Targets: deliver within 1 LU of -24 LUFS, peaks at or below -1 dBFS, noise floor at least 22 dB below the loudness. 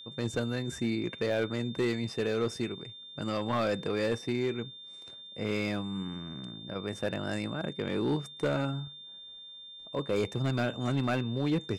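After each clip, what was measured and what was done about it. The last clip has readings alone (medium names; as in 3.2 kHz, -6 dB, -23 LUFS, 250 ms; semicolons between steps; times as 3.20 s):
clipped samples 1.2%; clipping level -22.5 dBFS; steady tone 3.6 kHz; tone level -45 dBFS; loudness -32.5 LUFS; peak level -22.5 dBFS; loudness target -24.0 LUFS
-> clip repair -22.5 dBFS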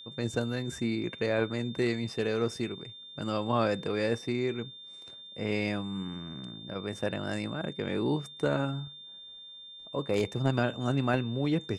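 clipped samples 0.0%; steady tone 3.6 kHz; tone level -45 dBFS
-> band-stop 3.6 kHz, Q 30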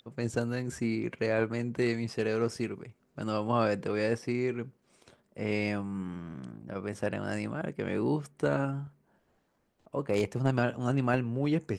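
steady tone not found; loudness -32.0 LUFS; peak level -13.5 dBFS; loudness target -24.0 LUFS
-> trim +8 dB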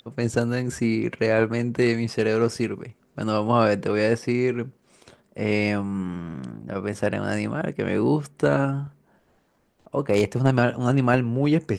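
loudness -24.0 LUFS; peak level -5.5 dBFS; noise floor -65 dBFS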